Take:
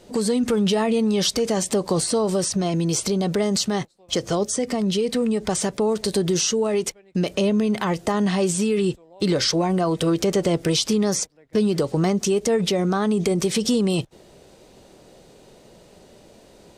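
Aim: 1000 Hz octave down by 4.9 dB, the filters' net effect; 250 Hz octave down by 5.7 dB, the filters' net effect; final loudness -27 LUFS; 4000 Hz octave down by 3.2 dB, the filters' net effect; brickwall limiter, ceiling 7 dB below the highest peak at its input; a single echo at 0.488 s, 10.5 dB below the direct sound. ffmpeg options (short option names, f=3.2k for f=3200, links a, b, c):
-af "equalizer=f=250:t=o:g=-8,equalizer=f=1k:t=o:g=-6,equalizer=f=4k:t=o:g=-4,alimiter=limit=-17dB:level=0:latency=1,aecho=1:1:488:0.299,volume=-0.5dB"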